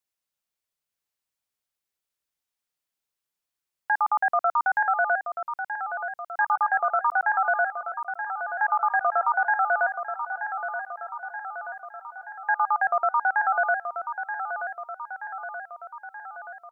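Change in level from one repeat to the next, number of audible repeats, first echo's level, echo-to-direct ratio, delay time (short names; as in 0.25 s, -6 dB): -4.5 dB, 6, -8.5 dB, -6.5 dB, 0.928 s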